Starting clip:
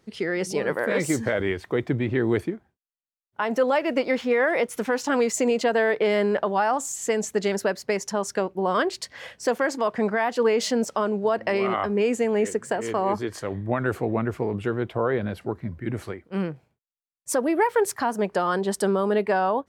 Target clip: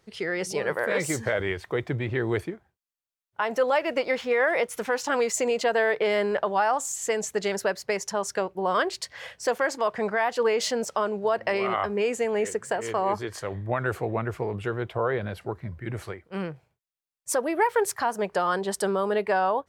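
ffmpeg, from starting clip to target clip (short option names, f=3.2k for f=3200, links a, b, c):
-af "equalizer=f=250:t=o:w=0.98:g=-9.5"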